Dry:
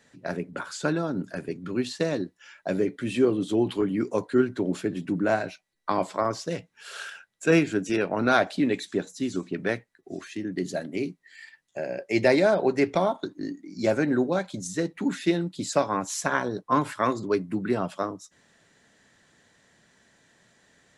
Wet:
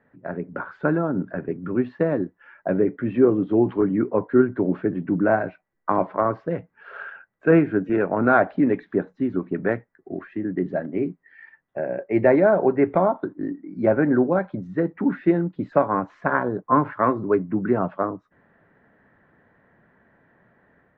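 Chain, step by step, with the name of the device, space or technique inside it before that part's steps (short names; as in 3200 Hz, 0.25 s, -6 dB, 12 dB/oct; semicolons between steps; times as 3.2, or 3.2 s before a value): action camera in a waterproof case (LPF 1700 Hz 24 dB/oct; AGC gain up to 5 dB; AAC 64 kbps 32000 Hz)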